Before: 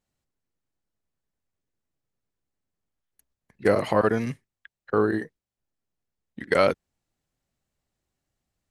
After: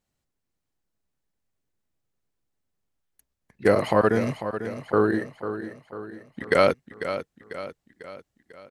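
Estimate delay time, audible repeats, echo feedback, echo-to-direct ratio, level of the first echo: 496 ms, 5, 50%, −9.0 dB, −10.5 dB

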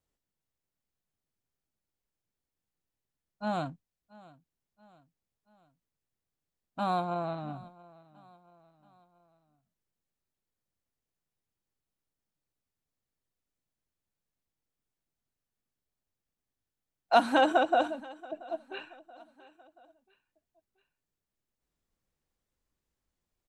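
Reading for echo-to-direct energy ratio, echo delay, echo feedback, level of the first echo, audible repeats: −21.0 dB, 680 ms, 49%, −22.0 dB, 3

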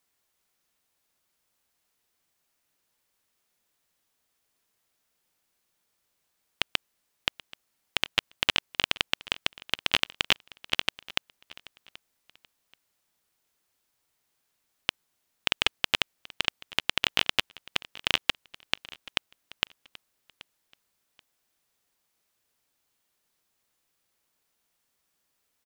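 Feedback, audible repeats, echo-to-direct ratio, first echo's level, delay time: 25%, 2, −20.0 dB, −20.5 dB, 781 ms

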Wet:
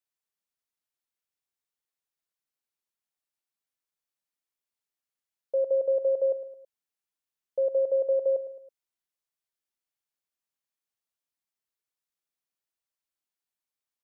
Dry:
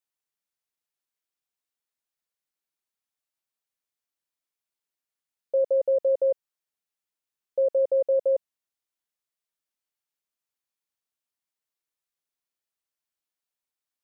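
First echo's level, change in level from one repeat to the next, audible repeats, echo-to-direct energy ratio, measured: −13.0 dB, −6.5 dB, 3, −12.0 dB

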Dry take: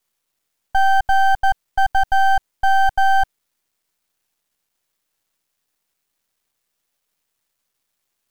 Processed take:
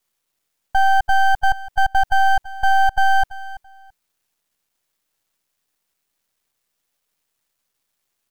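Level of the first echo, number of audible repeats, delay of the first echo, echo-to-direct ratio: −17.0 dB, 2, 334 ms, −17.0 dB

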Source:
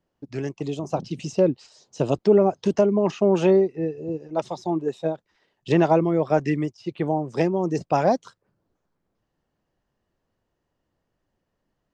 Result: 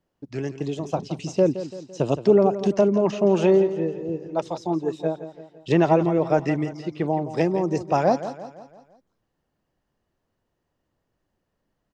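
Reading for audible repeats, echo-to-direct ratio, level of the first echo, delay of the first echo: 4, −11.5 dB, −12.5 dB, 169 ms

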